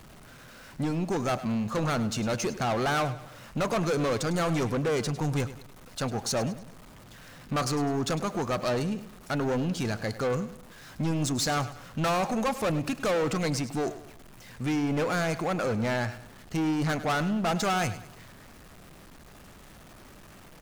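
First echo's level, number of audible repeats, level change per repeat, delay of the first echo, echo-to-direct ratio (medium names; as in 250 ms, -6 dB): -14.5 dB, 3, -8.0 dB, 102 ms, -14.0 dB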